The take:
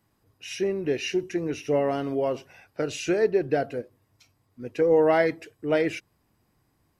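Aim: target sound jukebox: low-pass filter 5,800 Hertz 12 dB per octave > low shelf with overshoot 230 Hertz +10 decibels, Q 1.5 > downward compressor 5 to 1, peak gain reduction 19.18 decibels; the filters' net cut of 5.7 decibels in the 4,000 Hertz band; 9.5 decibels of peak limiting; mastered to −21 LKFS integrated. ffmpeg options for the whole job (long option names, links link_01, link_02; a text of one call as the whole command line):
ffmpeg -i in.wav -af "equalizer=frequency=4000:width_type=o:gain=-8.5,alimiter=limit=-20dB:level=0:latency=1,lowpass=5800,lowshelf=frequency=230:width_type=q:width=1.5:gain=10,acompressor=threshold=-43dB:ratio=5,volume=24.5dB" out.wav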